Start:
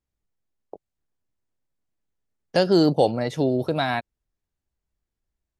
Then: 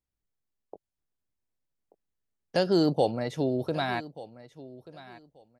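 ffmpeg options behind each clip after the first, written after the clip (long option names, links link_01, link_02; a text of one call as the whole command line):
ffmpeg -i in.wav -af "aecho=1:1:1184|2368:0.126|0.0239,volume=-5.5dB" out.wav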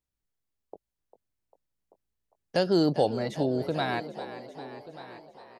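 ffmpeg -i in.wav -filter_complex "[0:a]asplit=8[link_01][link_02][link_03][link_04][link_05][link_06][link_07][link_08];[link_02]adelay=398,afreqshift=56,volume=-14dB[link_09];[link_03]adelay=796,afreqshift=112,volume=-18dB[link_10];[link_04]adelay=1194,afreqshift=168,volume=-22dB[link_11];[link_05]adelay=1592,afreqshift=224,volume=-26dB[link_12];[link_06]adelay=1990,afreqshift=280,volume=-30.1dB[link_13];[link_07]adelay=2388,afreqshift=336,volume=-34.1dB[link_14];[link_08]adelay=2786,afreqshift=392,volume=-38.1dB[link_15];[link_01][link_09][link_10][link_11][link_12][link_13][link_14][link_15]amix=inputs=8:normalize=0" out.wav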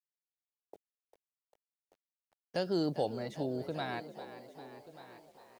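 ffmpeg -i in.wav -af "acrusher=bits=9:mix=0:aa=0.000001,volume=-8.5dB" out.wav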